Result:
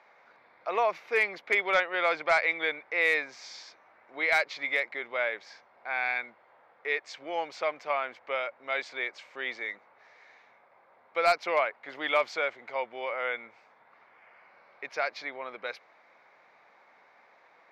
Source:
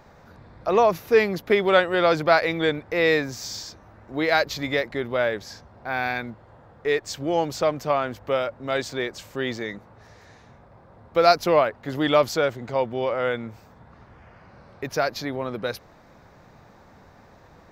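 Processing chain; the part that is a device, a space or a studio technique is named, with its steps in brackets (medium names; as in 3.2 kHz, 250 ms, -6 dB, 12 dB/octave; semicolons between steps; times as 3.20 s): megaphone (band-pass 670–3700 Hz; peaking EQ 2.2 kHz +11 dB 0.26 oct; hard clipper -10.5 dBFS, distortion -22 dB); 1.73–2.47 s: low-pass 4.7 kHz -> 8.5 kHz 12 dB/octave; trim -5 dB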